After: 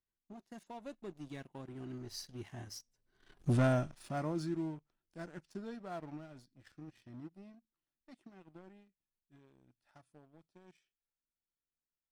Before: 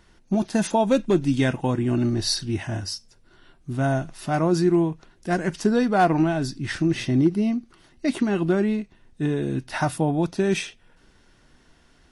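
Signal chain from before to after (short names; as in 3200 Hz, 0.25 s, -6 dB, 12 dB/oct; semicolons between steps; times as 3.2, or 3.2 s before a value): Doppler pass-by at 3.5, 19 m/s, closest 1.4 m; sample leveller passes 2; gain -3 dB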